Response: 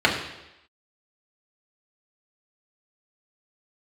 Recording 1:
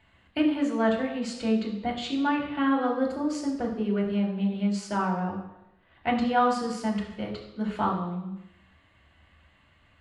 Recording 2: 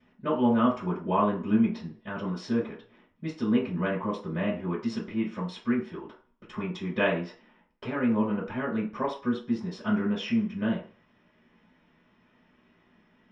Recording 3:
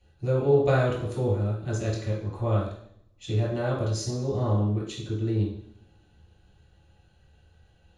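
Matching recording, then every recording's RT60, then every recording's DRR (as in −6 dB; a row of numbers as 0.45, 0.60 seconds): 1; 0.90, 0.40, 0.65 seconds; −3.0, −14.0, −5.5 decibels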